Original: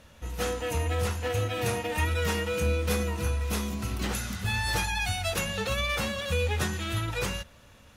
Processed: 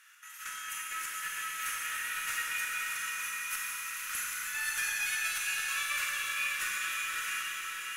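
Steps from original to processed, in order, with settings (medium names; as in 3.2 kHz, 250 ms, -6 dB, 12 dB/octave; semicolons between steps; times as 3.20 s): steep high-pass 1.3 kHz 48 dB/octave; peaking EQ 4 kHz -11.5 dB 1 oct; in parallel at -2 dB: compression, threshold -52 dBFS, peak gain reduction 19 dB; on the sum: square tremolo 4.4 Hz, depth 65%, duty 65%; valve stage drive 25 dB, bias 0.35; on a send: echo that smears into a reverb 565 ms, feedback 44%, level -4 dB; on the sum: Schroeder reverb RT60 3.2 s, combs from 31 ms, DRR -2.5 dB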